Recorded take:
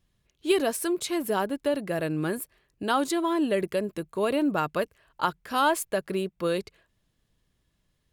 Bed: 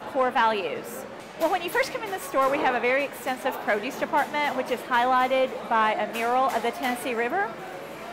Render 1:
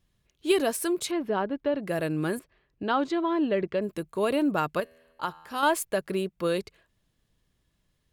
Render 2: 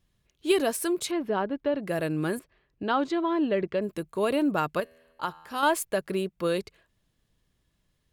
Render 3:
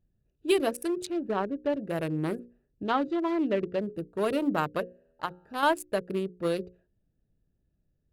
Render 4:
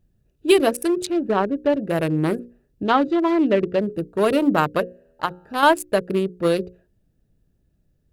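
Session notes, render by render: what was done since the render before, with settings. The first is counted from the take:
1.11–1.83 s: distance through air 290 m; 2.39–3.82 s: distance through air 190 m; 4.80–5.63 s: feedback comb 81 Hz, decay 1.6 s, mix 50%
no audible change
local Wiener filter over 41 samples; hum notches 60/120/180/240/300/360/420/480/540 Hz
trim +9 dB

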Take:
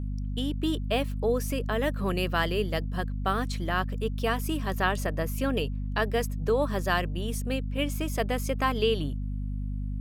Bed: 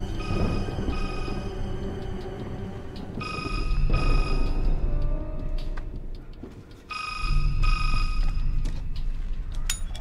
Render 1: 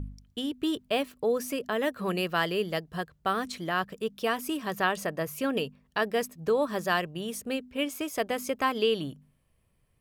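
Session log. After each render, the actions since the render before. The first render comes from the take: de-hum 50 Hz, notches 5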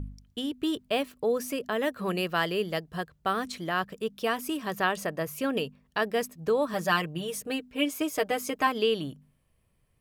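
6.73–8.67 s: comb 6.5 ms, depth 71%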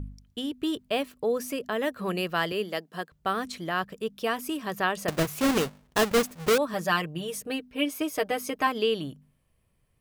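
2.52–3.12 s: Chebyshev high-pass 210 Hz, order 3; 5.08–6.58 s: square wave that keeps the level; 7.45–8.66 s: band-stop 7.3 kHz, Q 6.9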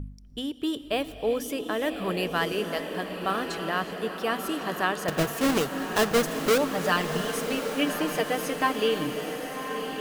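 echo that smears into a reverb 1111 ms, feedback 57%, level -7 dB; gated-style reverb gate 410 ms rising, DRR 11.5 dB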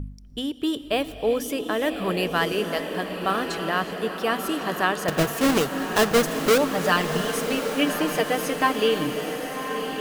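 trim +3.5 dB

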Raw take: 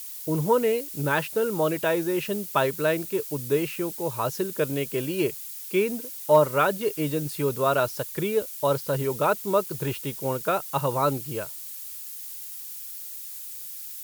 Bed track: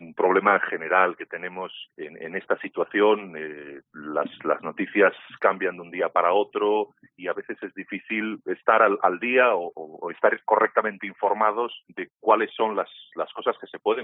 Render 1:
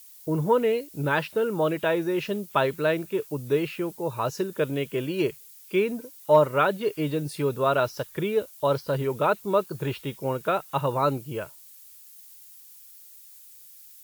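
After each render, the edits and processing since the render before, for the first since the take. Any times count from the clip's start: noise print and reduce 11 dB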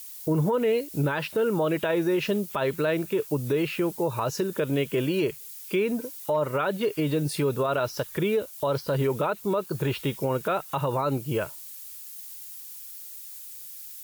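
in parallel at +2.5 dB: compression, threshold -32 dBFS, peak gain reduction 18 dB; on the sum: peak limiter -17 dBFS, peak gain reduction 10.5 dB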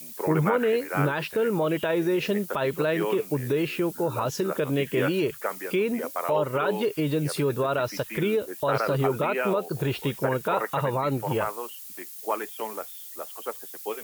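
add bed track -10 dB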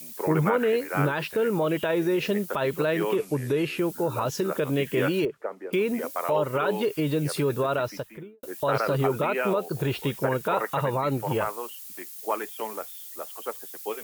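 3.16–3.79 s: brick-wall FIR low-pass 13 kHz; 5.25–5.73 s: band-pass filter 420 Hz, Q 0.95; 7.70–8.43 s: studio fade out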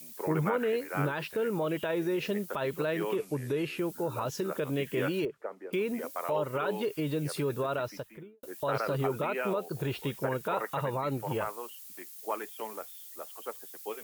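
trim -6 dB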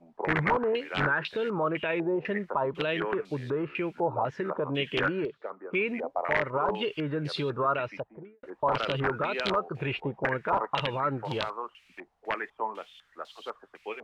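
integer overflow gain 21.5 dB; step-sequenced low-pass 4 Hz 790–3800 Hz

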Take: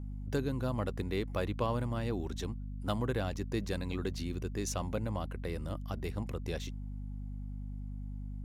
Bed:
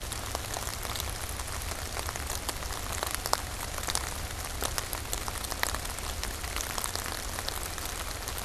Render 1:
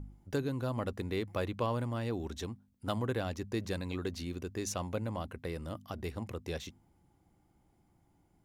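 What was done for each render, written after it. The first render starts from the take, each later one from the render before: de-hum 50 Hz, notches 5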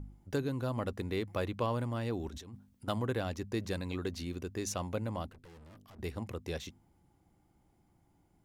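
2.28–2.88 s: compressor with a negative ratio -47 dBFS; 5.29–5.99 s: valve stage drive 53 dB, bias 0.75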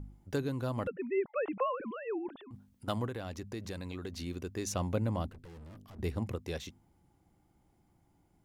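0.87–2.51 s: formants replaced by sine waves; 3.08–4.16 s: compression 2.5:1, threshold -38 dBFS; 4.73–6.36 s: bass shelf 430 Hz +6 dB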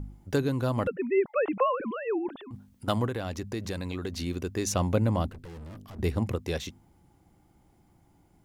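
trim +7 dB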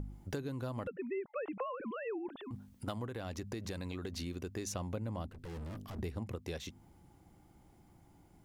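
compression 4:1, threshold -39 dBFS, peak gain reduction 16 dB

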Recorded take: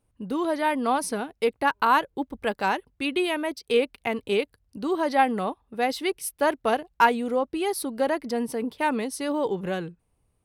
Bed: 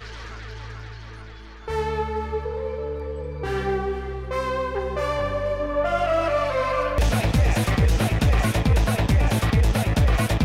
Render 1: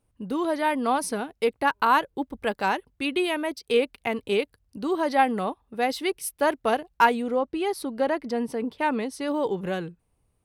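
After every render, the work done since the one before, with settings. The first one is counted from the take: 7.22–9.28 s: treble shelf 7.5 kHz -11.5 dB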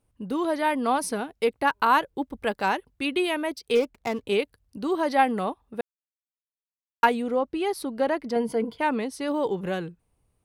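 3.75–4.27 s: median filter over 15 samples; 5.81–7.03 s: mute; 8.35–8.81 s: rippled EQ curve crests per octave 1.8, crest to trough 11 dB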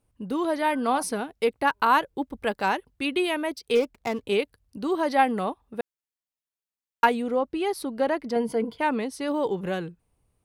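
0.54–1.03 s: de-hum 109.4 Hz, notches 16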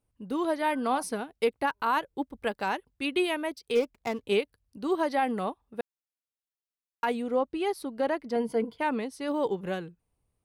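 peak limiter -16 dBFS, peak gain reduction 9 dB; upward expansion 1.5:1, over -34 dBFS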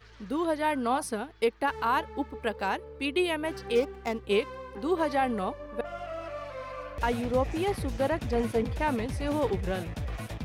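add bed -16 dB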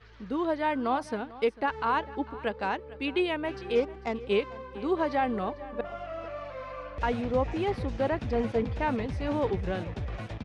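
distance through air 120 m; delay 448 ms -18.5 dB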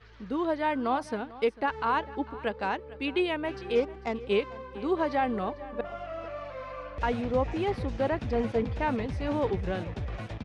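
no audible change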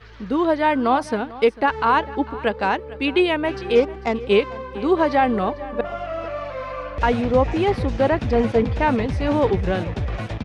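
trim +9.5 dB

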